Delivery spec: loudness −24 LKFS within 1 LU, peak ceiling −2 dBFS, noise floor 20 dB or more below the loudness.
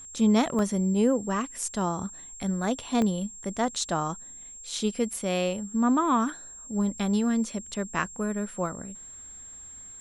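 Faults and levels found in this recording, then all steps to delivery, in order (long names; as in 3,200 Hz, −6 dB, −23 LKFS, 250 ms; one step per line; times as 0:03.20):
number of dropouts 3; longest dropout 1.2 ms; interfering tone 7,500 Hz; level of the tone −42 dBFS; integrated loudness −27.5 LKFS; sample peak −9.5 dBFS; target loudness −24.0 LKFS
→ repair the gap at 0:00.59/0:03.02/0:05.13, 1.2 ms
notch filter 7,500 Hz, Q 30
level +3.5 dB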